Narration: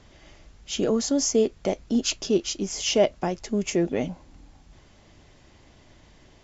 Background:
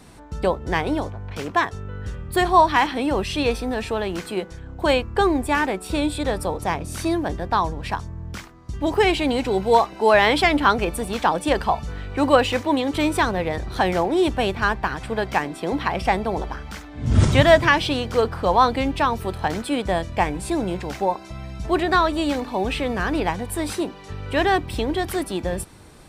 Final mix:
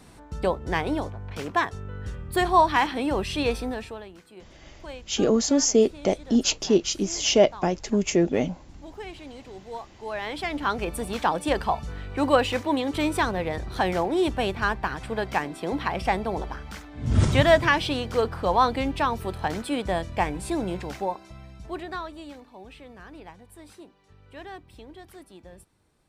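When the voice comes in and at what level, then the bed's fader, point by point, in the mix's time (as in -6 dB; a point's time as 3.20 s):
4.40 s, +2.5 dB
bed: 3.66 s -3.5 dB
4.18 s -21 dB
9.91 s -21 dB
10.98 s -4 dB
20.82 s -4 dB
22.54 s -21.5 dB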